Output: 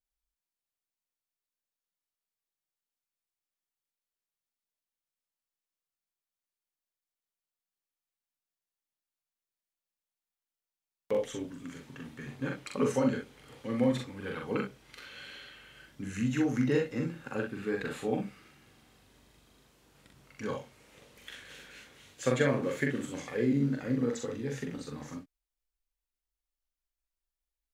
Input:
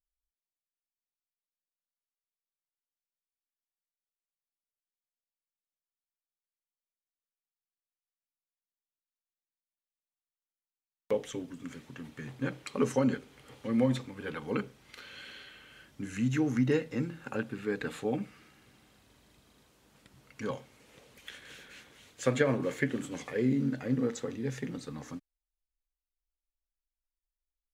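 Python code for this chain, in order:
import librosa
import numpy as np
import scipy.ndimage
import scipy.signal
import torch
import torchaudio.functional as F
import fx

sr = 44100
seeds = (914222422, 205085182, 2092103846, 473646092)

y = fx.room_early_taps(x, sr, ms=(42, 63), db=(-3.0, -8.5))
y = F.gain(torch.from_numpy(y), -1.5).numpy()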